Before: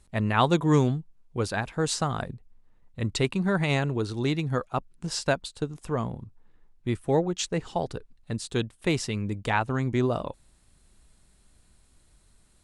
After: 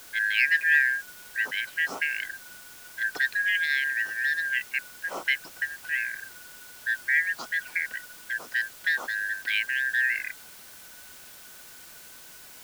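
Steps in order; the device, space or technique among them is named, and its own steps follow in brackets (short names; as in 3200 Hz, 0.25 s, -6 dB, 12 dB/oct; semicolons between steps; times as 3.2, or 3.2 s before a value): split-band scrambled radio (four-band scrambler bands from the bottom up 4123; BPF 300–2800 Hz; white noise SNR 18 dB)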